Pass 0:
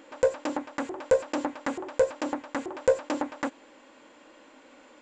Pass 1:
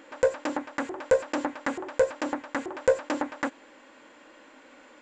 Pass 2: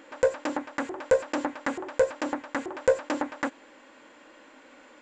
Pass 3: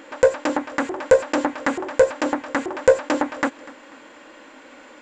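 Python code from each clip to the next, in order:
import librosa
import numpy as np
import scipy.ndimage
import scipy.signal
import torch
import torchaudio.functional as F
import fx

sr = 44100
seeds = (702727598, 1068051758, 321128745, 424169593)

y1 = fx.peak_eq(x, sr, hz=1700.0, db=4.5, octaves=0.87)
y2 = y1
y3 = fx.echo_feedback(y2, sr, ms=245, feedback_pct=42, wet_db=-20.0)
y3 = F.gain(torch.from_numpy(y3), 7.5).numpy()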